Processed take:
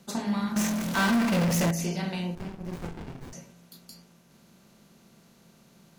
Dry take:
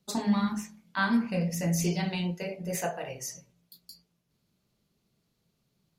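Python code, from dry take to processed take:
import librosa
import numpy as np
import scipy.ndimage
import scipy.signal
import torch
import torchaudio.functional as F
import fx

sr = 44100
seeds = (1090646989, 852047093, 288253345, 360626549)

y = fx.bin_compress(x, sr, power=0.6)
y = fx.power_curve(y, sr, exponent=0.35, at=(0.56, 1.71))
y = fx.running_max(y, sr, window=65, at=(2.35, 3.33))
y = y * 10.0 ** (-4.5 / 20.0)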